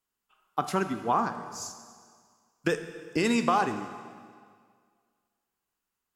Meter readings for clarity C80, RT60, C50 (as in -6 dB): 10.5 dB, 1.9 s, 9.5 dB